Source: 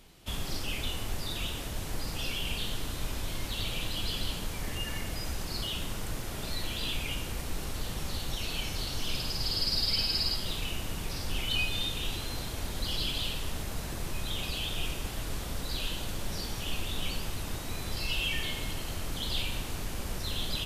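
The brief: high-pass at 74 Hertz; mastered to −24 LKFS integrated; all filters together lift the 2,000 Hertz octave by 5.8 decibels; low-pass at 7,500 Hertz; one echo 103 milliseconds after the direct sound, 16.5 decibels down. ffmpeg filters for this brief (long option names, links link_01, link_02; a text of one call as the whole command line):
ffmpeg -i in.wav -af "highpass=74,lowpass=7500,equalizer=frequency=2000:width_type=o:gain=8,aecho=1:1:103:0.15,volume=8dB" out.wav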